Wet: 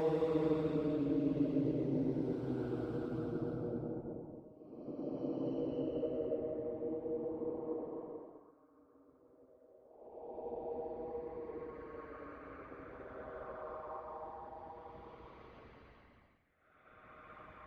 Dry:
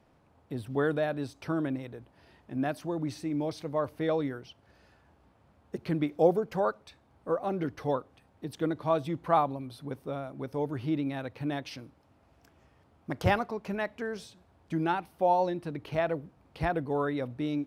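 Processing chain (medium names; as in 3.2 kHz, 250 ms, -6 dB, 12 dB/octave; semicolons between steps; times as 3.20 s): local Wiener filter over 25 samples; Doppler pass-by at 3.89 s, 10 m/s, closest 5.3 m; bass shelf 72 Hz +11.5 dB; hum notches 50/100/150/200/250 Hz; on a send: repeats whose band climbs or falls 217 ms, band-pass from 240 Hz, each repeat 0.7 oct, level -6 dB; on the sum: compression 1.5:1, threshold -47 dBFS, peak gain reduction 8 dB; trance gate "x.xx..xxx" 192 bpm -24 dB; Paulstretch 17×, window 0.10 s, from 4.07 s; harmonic-percussive split harmonic -11 dB; trim +12.5 dB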